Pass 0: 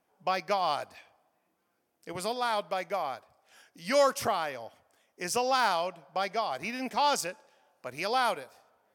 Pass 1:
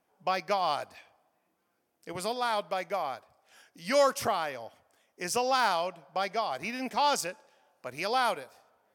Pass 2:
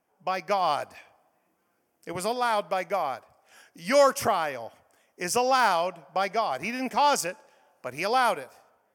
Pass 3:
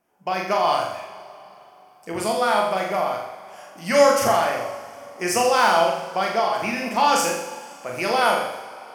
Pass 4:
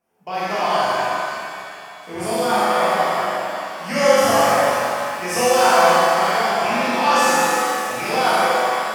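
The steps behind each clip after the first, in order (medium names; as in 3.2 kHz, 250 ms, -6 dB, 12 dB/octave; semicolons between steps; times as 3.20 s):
no audible change
peaking EQ 3.9 kHz -9 dB 0.4 oct; level rider gain up to 4.5 dB
flutter echo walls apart 7.2 m, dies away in 0.69 s; two-slope reverb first 0.31 s, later 3.3 s, from -18 dB, DRR 4 dB; trim +2 dB
pitch-shifted reverb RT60 2.5 s, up +7 st, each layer -8 dB, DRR -9 dB; trim -6.5 dB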